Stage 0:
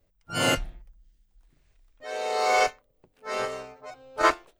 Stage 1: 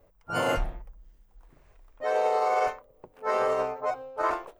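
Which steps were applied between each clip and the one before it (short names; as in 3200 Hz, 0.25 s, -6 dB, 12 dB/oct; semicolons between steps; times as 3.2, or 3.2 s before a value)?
graphic EQ 500/1000/4000/8000 Hz +7/+9/-6/-4 dB; reverse; compressor 5:1, threshold -25 dBFS, peak gain reduction 15.5 dB; reverse; limiter -22.5 dBFS, peak gain reduction 10.5 dB; gain +5.5 dB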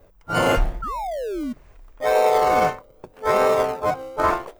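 painted sound fall, 0.82–1.53, 230–1400 Hz -35 dBFS; in parallel at -11.5 dB: decimation with a swept rate 40×, swing 60% 0.8 Hz; on the sum: gain +7 dB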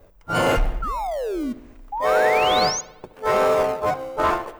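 soft clip -13.5 dBFS, distortion -16 dB; painted sound rise, 1.92–2.81, 790–6800 Hz -28 dBFS; analogue delay 72 ms, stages 2048, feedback 61%, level -17.5 dB; gain +1.5 dB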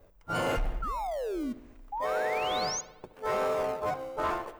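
limiter -16 dBFS, peak gain reduction 6 dB; gain -7 dB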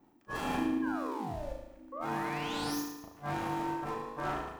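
tracing distortion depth 0.071 ms; flutter echo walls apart 6.3 m, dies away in 0.81 s; ring modulator 290 Hz; gain -5 dB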